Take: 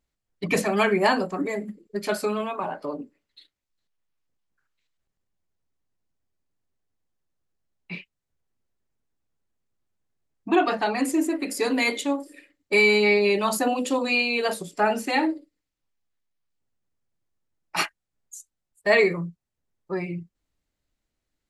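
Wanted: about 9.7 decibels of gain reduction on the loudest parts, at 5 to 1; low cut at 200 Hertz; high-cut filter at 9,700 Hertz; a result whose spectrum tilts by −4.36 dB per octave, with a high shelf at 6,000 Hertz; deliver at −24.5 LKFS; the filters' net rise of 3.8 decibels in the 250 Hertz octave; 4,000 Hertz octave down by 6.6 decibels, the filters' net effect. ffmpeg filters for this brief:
ffmpeg -i in.wav -af "highpass=200,lowpass=9700,equalizer=frequency=250:width_type=o:gain=6.5,equalizer=frequency=4000:width_type=o:gain=-7,highshelf=frequency=6000:gain=-3.5,acompressor=threshold=-25dB:ratio=5,volume=5.5dB" out.wav

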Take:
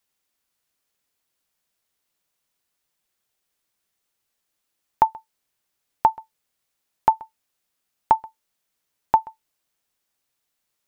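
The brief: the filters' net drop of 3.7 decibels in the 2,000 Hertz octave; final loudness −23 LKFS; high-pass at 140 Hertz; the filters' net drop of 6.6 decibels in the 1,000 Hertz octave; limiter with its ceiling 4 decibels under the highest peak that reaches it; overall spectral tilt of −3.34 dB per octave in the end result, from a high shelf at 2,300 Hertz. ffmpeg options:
ffmpeg -i in.wav -af "highpass=140,equalizer=frequency=1000:width_type=o:gain=-7.5,equalizer=frequency=2000:width_type=o:gain=-3.5,highshelf=frequency=2300:gain=3.5,volume=10.5dB,alimiter=limit=-2dB:level=0:latency=1" out.wav

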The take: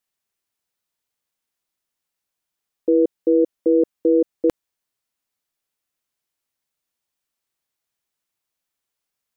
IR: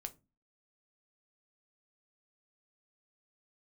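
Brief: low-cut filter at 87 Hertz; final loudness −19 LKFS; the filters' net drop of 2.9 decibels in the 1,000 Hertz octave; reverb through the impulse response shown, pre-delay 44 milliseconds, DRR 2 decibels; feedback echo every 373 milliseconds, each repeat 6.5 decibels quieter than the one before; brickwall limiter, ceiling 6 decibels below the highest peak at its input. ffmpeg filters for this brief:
-filter_complex "[0:a]highpass=87,equalizer=frequency=1000:width_type=o:gain=-4,alimiter=limit=-15.5dB:level=0:latency=1,aecho=1:1:373|746|1119|1492|1865|2238:0.473|0.222|0.105|0.0491|0.0231|0.0109,asplit=2[link_01][link_02];[1:a]atrim=start_sample=2205,adelay=44[link_03];[link_02][link_03]afir=irnorm=-1:irlink=0,volume=1.5dB[link_04];[link_01][link_04]amix=inputs=2:normalize=0,volume=7.5dB"

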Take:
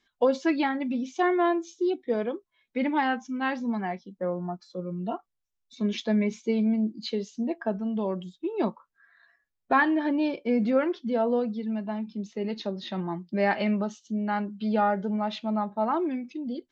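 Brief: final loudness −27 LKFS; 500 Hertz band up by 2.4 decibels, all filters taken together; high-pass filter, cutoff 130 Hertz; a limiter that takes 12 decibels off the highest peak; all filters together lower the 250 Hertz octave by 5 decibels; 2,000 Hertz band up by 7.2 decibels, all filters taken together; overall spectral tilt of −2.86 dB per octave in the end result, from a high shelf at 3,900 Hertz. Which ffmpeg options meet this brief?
ffmpeg -i in.wav -af "highpass=130,equalizer=frequency=250:width_type=o:gain=-7.5,equalizer=frequency=500:width_type=o:gain=4.5,equalizer=frequency=2000:width_type=o:gain=7.5,highshelf=frequency=3900:gain=5.5,volume=3dB,alimiter=limit=-15dB:level=0:latency=1" out.wav

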